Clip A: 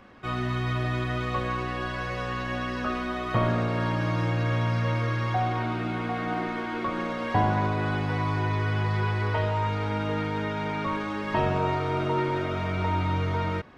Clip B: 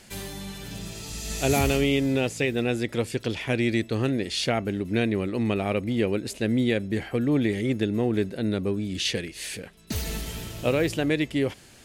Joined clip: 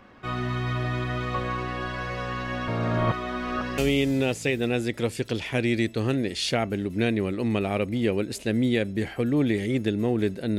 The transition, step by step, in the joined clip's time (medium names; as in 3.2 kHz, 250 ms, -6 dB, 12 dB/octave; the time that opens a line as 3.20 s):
clip A
2.68–3.78 s: reverse
3.78 s: go over to clip B from 1.73 s